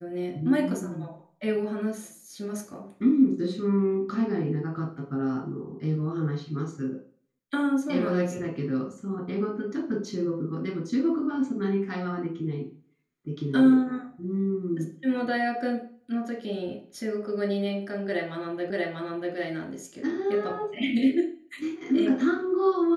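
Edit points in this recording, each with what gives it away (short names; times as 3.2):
18.7 repeat of the last 0.64 s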